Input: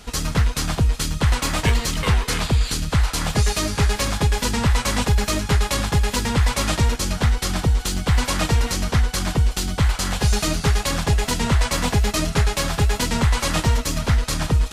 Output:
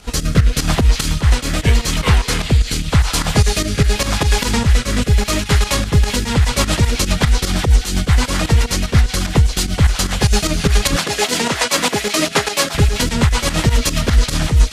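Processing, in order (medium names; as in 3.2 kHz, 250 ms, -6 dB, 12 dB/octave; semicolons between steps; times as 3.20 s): volume shaper 149 bpm, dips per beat 2, -12 dB, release 106 ms; repeats whose band climbs or falls 390 ms, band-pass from 2.7 kHz, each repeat 0.7 oct, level -5.5 dB; rotary cabinet horn 0.85 Hz, later 8 Hz, at 5.68 s; 10.96–12.75 s: high-pass 300 Hz 12 dB/octave; gain riding 0.5 s; trim +8 dB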